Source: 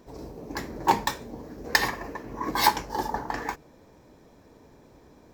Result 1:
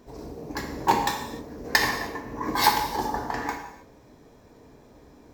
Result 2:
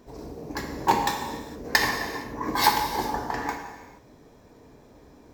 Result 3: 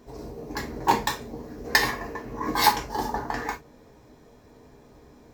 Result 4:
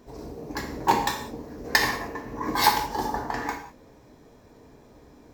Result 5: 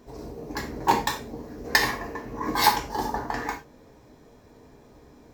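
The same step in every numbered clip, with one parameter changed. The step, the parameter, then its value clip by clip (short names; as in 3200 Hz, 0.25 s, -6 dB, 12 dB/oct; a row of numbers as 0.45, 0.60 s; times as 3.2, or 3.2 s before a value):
non-linear reverb, gate: 330, 490, 80, 220, 120 ms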